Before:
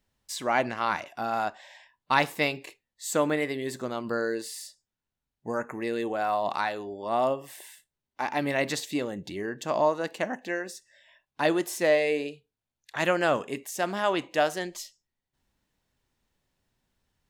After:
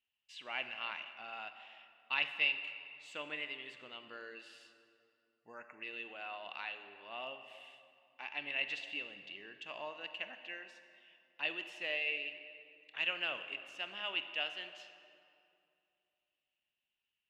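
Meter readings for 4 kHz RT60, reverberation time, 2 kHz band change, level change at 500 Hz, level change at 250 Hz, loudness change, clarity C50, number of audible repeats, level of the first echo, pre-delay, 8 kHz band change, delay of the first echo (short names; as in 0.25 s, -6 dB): 1.7 s, 2.6 s, -6.5 dB, -22.0 dB, -25.0 dB, -11.0 dB, 9.5 dB, none, none, 38 ms, under -25 dB, none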